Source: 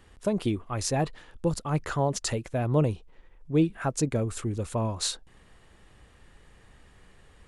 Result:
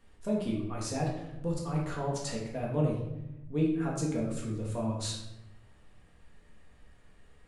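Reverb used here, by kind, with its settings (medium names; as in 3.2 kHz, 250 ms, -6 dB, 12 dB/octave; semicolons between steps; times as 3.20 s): simulated room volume 300 m³, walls mixed, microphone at 1.7 m; trim -11 dB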